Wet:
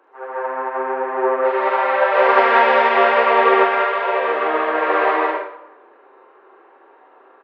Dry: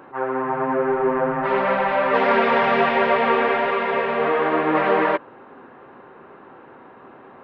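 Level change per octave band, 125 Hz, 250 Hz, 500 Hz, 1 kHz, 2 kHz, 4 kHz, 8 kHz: under -20 dB, -4.0 dB, +2.5 dB, +4.5 dB, +4.0 dB, +3.0 dB, n/a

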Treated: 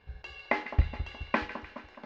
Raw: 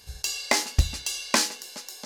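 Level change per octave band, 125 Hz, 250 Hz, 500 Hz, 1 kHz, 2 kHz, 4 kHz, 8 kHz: -3.0 dB, -3.0 dB, -3.0 dB, -3.0 dB, -4.5 dB, -19.0 dB, under -35 dB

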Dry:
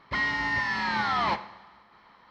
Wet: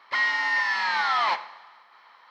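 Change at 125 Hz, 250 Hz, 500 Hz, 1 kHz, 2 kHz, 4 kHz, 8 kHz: under -20 dB, under -15 dB, -2.0 dB, +2.5 dB, +4.0 dB, +4.0 dB, n/a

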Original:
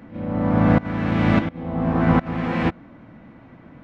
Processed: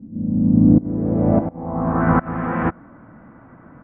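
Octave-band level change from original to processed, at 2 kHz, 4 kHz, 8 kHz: -2.5 dB, under -20 dB, n/a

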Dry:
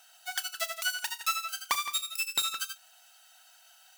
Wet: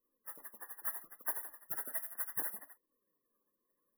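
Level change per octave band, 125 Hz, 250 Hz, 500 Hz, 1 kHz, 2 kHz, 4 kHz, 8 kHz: n/a, +1.0 dB, -8.0 dB, -16.5 dB, -16.0 dB, under -40 dB, -12.5 dB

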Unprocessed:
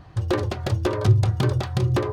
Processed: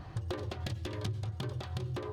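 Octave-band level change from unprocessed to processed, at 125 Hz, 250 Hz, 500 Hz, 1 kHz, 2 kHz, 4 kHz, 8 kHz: -16.0, -15.0, -16.0, -15.0, -13.5, -10.0, -11.5 dB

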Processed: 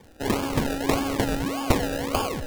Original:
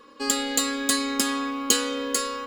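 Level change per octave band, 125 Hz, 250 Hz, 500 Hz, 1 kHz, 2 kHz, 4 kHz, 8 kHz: n/a, +1.5 dB, +4.0 dB, +2.0 dB, -2.0 dB, -7.5 dB, -12.0 dB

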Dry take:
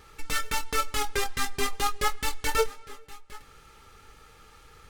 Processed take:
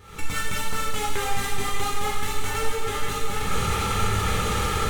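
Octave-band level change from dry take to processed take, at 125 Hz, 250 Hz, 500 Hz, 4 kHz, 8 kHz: +15.5, +10.0, +3.0, +4.0, +4.0 dB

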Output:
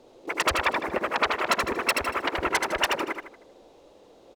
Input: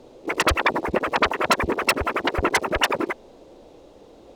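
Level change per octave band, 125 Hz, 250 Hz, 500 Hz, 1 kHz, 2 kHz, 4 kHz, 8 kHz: -10.0, -6.5, -5.0, -3.5, -3.0, -2.5, -2.5 dB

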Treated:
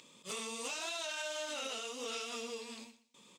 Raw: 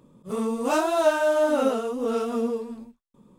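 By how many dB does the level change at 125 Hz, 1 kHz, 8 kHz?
n/a, -18.0 dB, -1.0 dB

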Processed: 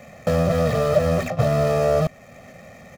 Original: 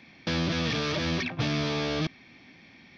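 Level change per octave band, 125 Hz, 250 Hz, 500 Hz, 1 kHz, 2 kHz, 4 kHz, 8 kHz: +9.0 dB, +4.0 dB, +15.0 dB, +9.5 dB, -0.5 dB, -6.5 dB, n/a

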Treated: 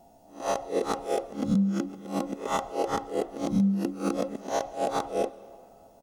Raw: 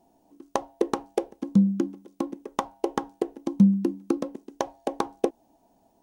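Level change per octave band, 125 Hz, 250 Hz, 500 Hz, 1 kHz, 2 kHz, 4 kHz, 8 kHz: -3.5 dB, -3.5 dB, +1.0 dB, +2.0 dB, +3.0 dB, +3.0 dB, n/a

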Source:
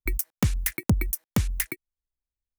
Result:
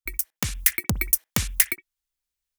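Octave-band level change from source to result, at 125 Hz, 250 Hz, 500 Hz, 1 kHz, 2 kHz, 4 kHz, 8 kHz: -5.0, -4.5, -3.0, +1.5, +6.0, +7.5, +8.5 dB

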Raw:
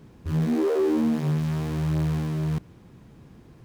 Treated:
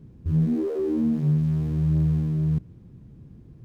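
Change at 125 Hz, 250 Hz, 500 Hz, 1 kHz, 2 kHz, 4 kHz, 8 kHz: +3.5 dB, +1.0 dB, -4.0 dB, under -10 dB, under -10 dB, under -10 dB, n/a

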